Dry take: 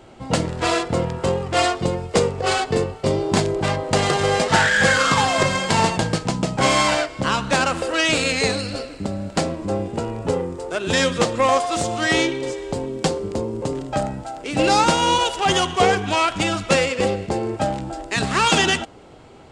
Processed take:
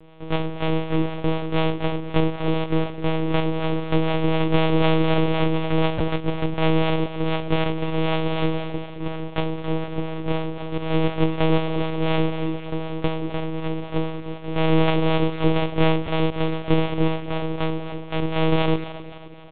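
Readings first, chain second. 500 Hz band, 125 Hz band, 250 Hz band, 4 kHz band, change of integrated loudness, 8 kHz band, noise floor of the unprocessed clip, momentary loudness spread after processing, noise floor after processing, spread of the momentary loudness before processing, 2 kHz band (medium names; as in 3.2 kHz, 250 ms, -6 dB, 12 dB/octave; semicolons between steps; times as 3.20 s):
-3.0 dB, +2.0 dB, +1.5 dB, -9.0 dB, -3.5 dB, under -40 dB, -39 dBFS, 8 LU, -35 dBFS, 10 LU, -10.0 dB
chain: sorted samples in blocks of 128 samples; low-pass 2.5 kHz 6 dB/octave; comb 5.5 ms, depth 56%; harmonic tremolo 4 Hz, depth 50%, crossover 510 Hz; vibrato 0.87 Hz 46 cents; on a send: two-band feedback delay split 330 Hz, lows 174 ms, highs 263 ms, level -14 dB; on the sum: monotone LPC vocoder at 8 kHz 160 Hz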